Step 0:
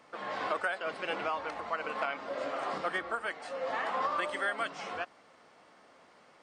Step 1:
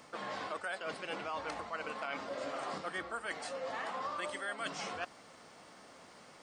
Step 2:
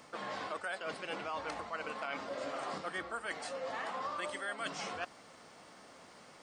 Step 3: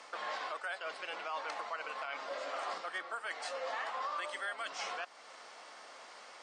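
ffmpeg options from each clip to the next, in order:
-af "bass=f=250:g=6,treble=f=4000:g=9,areverse,acompressor=threshold=0.0112:ratio=6,areverse,volume=1.33"
-af anull
-af "alimiter=level_in=2.82:limit=0.0631:level=0:latency=1:release=286,volume=0.355,highpass=620,lowpass=7300,volume=1.88"

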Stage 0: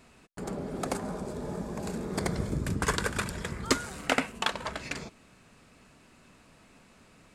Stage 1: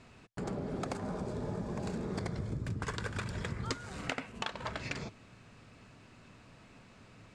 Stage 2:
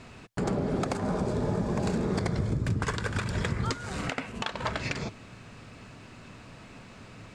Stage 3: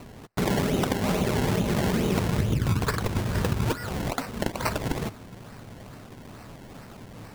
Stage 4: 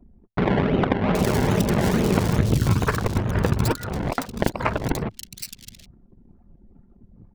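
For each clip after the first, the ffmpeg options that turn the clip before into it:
-af "lowpass=6200,equalizer=f=110:t=o:w=0.47:g=10,acompressor=threshold=0.0224:ratio=10"
-af "alimiter=level_in=1.19:limit=0.0631:level=0:latency=1:release=188,volume=0.841,volume=2.82"
-af "acrusher=samples=25:mix=1:aa=0.000001:lfo=1:lforange=25:lforate=2.3,volume=1.58"
-filter_complex "[0:a]anlmdn=10,acrossover=split=3300[s0][s1];[s1]adelay=770[s2];[s0][s2]amix=inputs=2:normalize=0,aeval=exprs='0.266*(cos(1*acos(clip(val(0)/0.266,-1,1)))-cos(1*PI/2))+0.0335*(cos(3*acos(clip(val(0)/0.266,-1,1)))-cos(3*PI/2))':c=same,volume=2.37"

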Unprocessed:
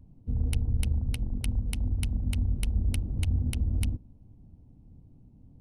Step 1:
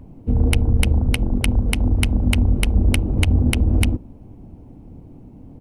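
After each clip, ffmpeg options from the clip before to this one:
-filter_complex "[0:a]firequalizer=gain_entry='entry(120,0);entry(340,10);entry(2200,11);entry(3800,3)':delay=0.05:min_phase=1,asplit=2[s0][s1];[s1]alimiter=limit=0.15:level=0:latency=1:release=157,volume=0.794[s2];[s0][s2]amix=inputs=2:normalize=0,volume=1.88"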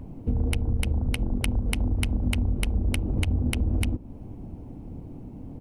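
-af "acompressor=threshold=0.0501:ratio=3,volume=1.19"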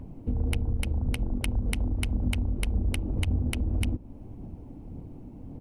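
-af "aphaser=in_gain=1:out_gain=1:delay=3.6:decay=0.2:speed=1.8:type=sinusoidal,volume=0.668"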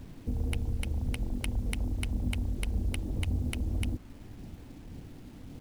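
-af "acrusher=bits=8:mix=0:aa=0.000001,volume=0.631"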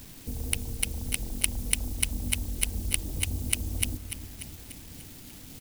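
-filter_complex "[0:a]crystalizer=i=9:c=0,asplit=2[s0][s1];[s1]aecho=0:1:294|588|882|1176|1470|1764|2058:0.282|0.163|0.0948|0.055|0.0319|0.0185|0.0107[s2];[s0][s2]amix=inputs=2:normalize=0,volume=0.668"

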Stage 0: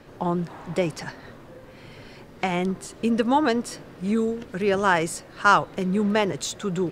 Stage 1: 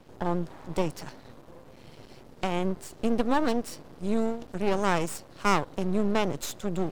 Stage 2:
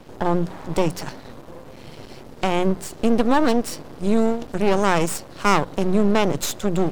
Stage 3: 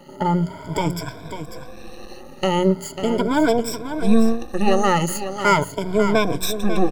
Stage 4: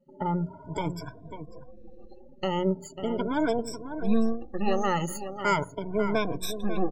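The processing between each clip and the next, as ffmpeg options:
-af "equalizer=f=1800:t=o:w=1.2:g=-9,aeval=exprs='max(val(0),0)':c=same"
-filter_complex "[0:a]bandreject=f=60:t=h:w=6,bandreject=f=120:t=h:w=6,bandreject=f=180:t=h:w=6,asplit=2[s0][s1];[s1]alimiter=limit=0.106:level=0:latency=1:release=36,volume=0.891[s2];[s0][s2]amix=inputs=2:normalize=0,volume=1.58"
-filter_complex "[0:a]afftfilt=real='re*pow(10,22/40*sin(2*PI*(1.7*log(max(b,1)*sr/1024/100)/log(2)-(0.4)*(pts-256)/sr)))':imag='im*pow(10,22/40*sin(2*PI*(1.7*log(max(b,1)*sr/1024/100)/log(2)-(0.4)*(pts-256)/sr)))':win_size=1024:overlap=0.75,asplit=2[s0][s1];[s1]aecho=0:1:545:0.316[s2];[s0][s2]amix=inputs=2:normalize=0,volume=0.631"
-af "afftdn=nr=31:nf=-33,volume=0.376"

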